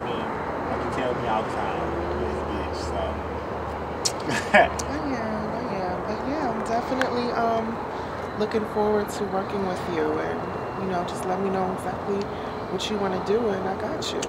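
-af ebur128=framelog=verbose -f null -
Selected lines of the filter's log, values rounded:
Integrated loudness:
  I:         -26.3 LUFS
  Threshold: -36.3 LUFS
Loudness range:
  LRA:         3.0 LU
  Threshold: -46.2 LUFS
  LRA low:   -27.6 LUFS
  LRA high:  -24.6 LUFS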